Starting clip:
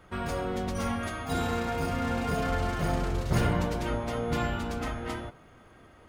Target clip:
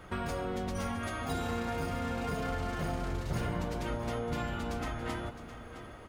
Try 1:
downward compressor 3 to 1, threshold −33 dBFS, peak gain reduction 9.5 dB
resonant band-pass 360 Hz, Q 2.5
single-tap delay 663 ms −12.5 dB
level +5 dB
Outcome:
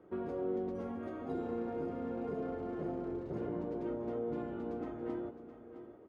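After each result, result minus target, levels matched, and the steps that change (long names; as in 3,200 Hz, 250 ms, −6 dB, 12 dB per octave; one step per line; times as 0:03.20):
downward compressor: peak gain reduction −4.5 dB; 500 Hz band +4.0 dB
change: downward compressor 3 to 1, threshold −40 dBFS, peak gain reduction 14 dB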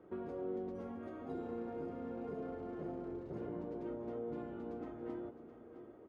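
500 Hz band +4.0 dB
remove: resonant band-pass 360 Hz, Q 2.5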